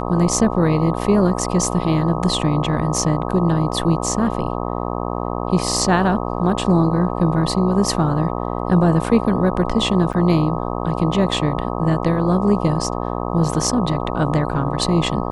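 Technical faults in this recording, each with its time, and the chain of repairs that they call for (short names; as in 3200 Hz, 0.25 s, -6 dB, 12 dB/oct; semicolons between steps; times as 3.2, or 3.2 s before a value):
buzz 60 Hz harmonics 21 -24 dBFS
10.13–10.14 gap 8.3 ms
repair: de-hum 60 Hz, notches 21; interpolate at 10.13, 8.3 ms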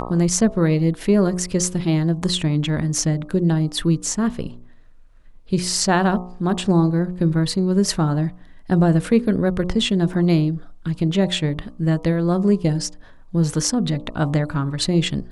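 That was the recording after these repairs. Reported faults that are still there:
none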